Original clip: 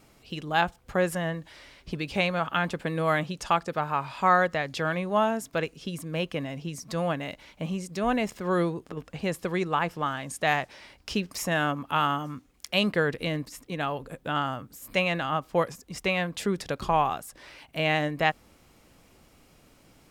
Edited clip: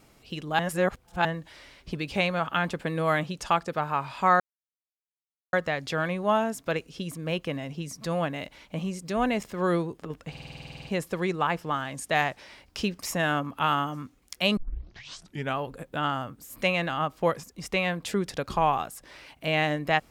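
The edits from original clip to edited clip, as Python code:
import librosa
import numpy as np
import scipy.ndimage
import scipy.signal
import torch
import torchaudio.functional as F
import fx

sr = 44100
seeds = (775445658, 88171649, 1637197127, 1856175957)

y = fx.edit(x, sr, fx.reverse_span(start_s=0.59, length_s=0.66),
    fx.insert_silence(at_s=4.4, length_s=1.13),
    fx.stutter(start_s=9.17, slice_s=0.05, count=12),
    fx.tape_start(start_s=12.89, length_s=1.01), tone=tone)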